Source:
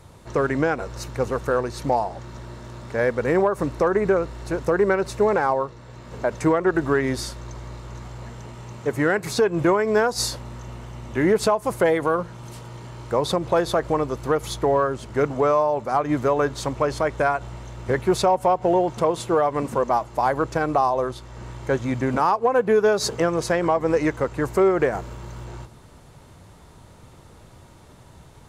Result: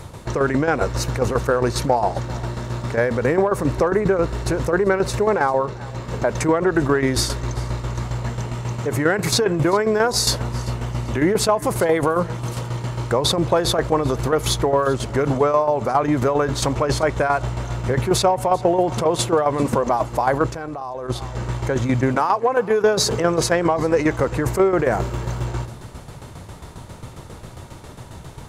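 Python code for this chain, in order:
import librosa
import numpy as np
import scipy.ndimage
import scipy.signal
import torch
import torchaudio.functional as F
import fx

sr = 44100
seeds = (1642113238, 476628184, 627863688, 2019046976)

p1 = fx.peak_eq(x, sr, hz=120.0, db=2.5, octaves=0.26)
p2 = fx.over_compress(p1, sr, threshold_db=-28.0, ratio=-1.0)
p3 = p1 + F.gain(torch.from_numpy(p2), 1.0).numpy()
p4 = fx.tremolo_shape(p3, sr, shape='saw_down', hz=7.4, depth_pct=65)
p5 = p4 + fx.echo_feedback(p4, sr, ms=392, feedback_pct=32, wet_db=-21, dry=0)
p6 = fx.level_steps(p5, sr, step_db=16, at=(20.5, 21.09), fade=0.02)
p7 = fx.low_shelf(p6, sr, hz=200.0, db=-10.5, at=(22.15, 22.83))
y = F.gain(torch.from_numpy(p7), 2.5).numpy()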